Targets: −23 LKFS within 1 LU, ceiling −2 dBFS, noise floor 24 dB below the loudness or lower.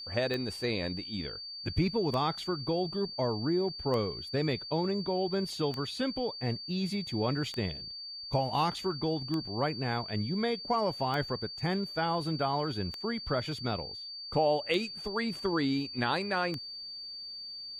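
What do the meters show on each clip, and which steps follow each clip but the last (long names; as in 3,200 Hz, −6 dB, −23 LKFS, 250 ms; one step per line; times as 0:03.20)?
number of clicks 10; interfering tone 4,600 Hz; level of the tone −40 dBFS; integrated loudness −32.0 LKFS; sample peak −14.0 dBFS; target loudness −23.0 LKFS
→ click removal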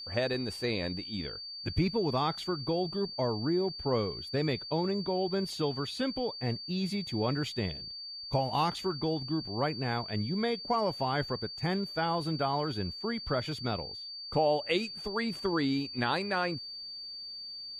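number of clicks 0; interfering tone 4,600 Hz; level of the tone −40 dBFS
→ notch filter 4,600 Hz, Q 30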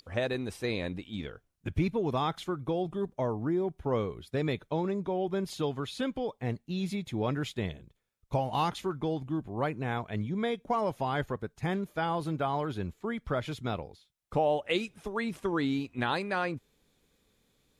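interfering tone none found; integrated loudness −32.5 LKFS; sample peak −14.5 dBFS; target loudness −23.0 LKFS
→ level +9.5 dB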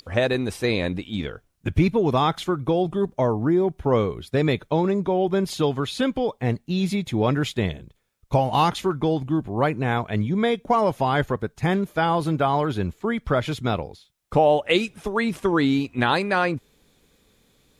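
integrated loudness −23.0 LKFS; sample peak −5.0 dBFS; background noise floor −65 dBFS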